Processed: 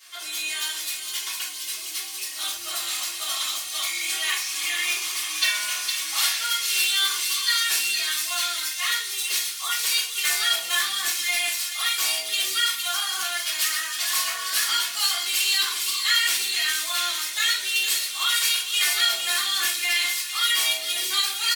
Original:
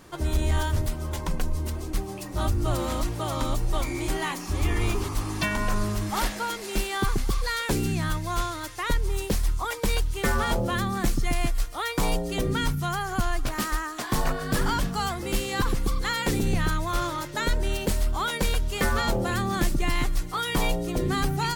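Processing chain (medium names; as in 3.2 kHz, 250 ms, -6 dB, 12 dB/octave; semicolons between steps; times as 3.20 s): Chebyshev high-pass 2.9 kHz, order 2; comb 2.8 ms, depth 53%; feedback echo behind a high-pass 459 ms, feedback 51%, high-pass 3.2 kHz, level -4 dB; simulated room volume 54 m³, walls mixed, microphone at 2.5 m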